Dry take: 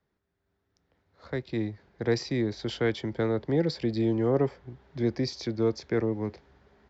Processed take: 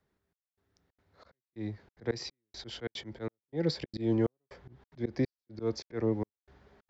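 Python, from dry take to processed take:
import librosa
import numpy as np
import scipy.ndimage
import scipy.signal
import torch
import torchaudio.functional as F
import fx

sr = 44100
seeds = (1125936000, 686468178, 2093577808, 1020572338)

y = fx.step_gate(x, sr, bpm=183, pattern='xxxx...xxxx.', floor_db=-60.0, edge_ms=4.5)
y = fx.auto_swell(y, sr, attack_ms=157.0)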